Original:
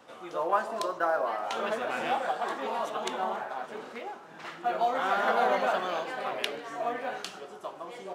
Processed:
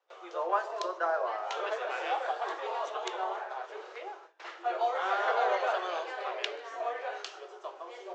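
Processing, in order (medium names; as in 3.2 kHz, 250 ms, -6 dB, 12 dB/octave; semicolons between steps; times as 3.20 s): steep low-pass 7.1 kHz 48 dB/octave; gate with hold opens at -38 dBFS; steep high-pass 350 Hz 72 dB/octave; trim -2.5 dB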